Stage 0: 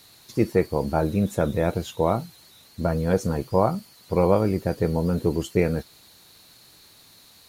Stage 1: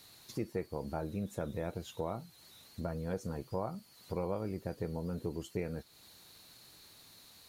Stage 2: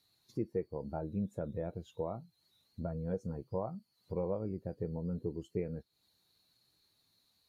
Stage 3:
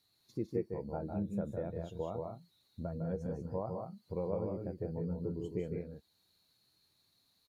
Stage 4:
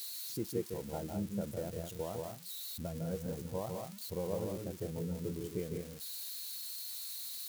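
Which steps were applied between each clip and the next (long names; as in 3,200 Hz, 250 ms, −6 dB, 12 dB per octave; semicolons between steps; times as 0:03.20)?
downward compressor 2 to 1, threshold −36 dBFS, peak gain reduction 12.5 dB; level −5.5 dB
every bin expanded away from the loudest bin 1.5 to 1
loudspeakers that aren't time-aligned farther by 53 metres −6 dB, 65 metres −6 dB; level −1.5 dB
spike at every zero crossing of −35.5 dBFS; level −1 dB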